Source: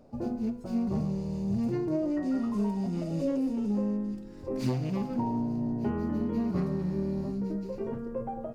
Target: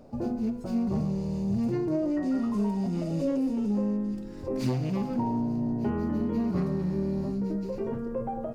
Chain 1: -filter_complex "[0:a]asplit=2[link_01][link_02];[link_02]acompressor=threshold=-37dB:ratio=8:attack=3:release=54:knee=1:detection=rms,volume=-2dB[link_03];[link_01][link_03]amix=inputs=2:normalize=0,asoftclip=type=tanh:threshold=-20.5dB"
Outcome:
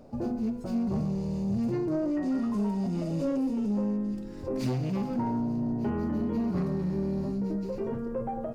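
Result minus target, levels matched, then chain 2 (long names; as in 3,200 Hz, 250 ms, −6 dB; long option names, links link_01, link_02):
soft clipping: distortion +18 dB
-filter_complex "[0:a]asplit=2[link_01][link_02];[link_02]acompressor=threshold=-37dB:ratio=8:attack=3:release=54:knee=1:detection=rms,volume=-2dB[link_03];[link_01][link_03]amix=inputs=2:normalize=0,asoftclip=type=tanh:threshold=-10.5dB"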